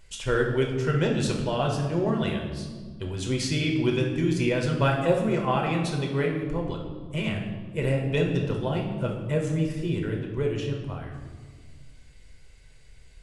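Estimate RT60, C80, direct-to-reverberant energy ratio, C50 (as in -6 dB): 1.6 s, 7.0 dB, 0.0 dB, 4.5 dB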